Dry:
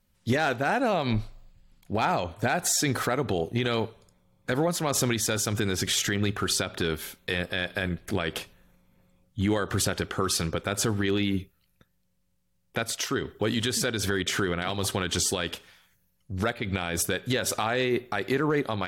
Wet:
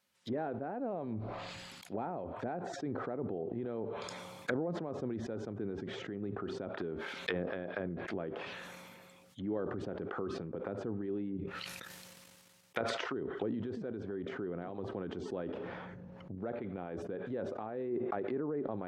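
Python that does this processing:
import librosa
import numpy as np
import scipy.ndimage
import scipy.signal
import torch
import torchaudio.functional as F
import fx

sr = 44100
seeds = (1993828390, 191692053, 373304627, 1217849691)

y = fx.level_steps(x, sr, step_db=9, at=(11.37, 12.88))
y = fx.env_flatten(y, sr, amount_pct=100, at=(15.25, 16.35))
y = fx.env_lowpass_down(y, sr, base_hz=360.0, full_db=-25.0)
y = fx.weighting(y, sr, curve='A')
y = fx.sustainer(y, sr, db_per_s=23.0)
y = y * librosa.db_to_amplitude(-1.5)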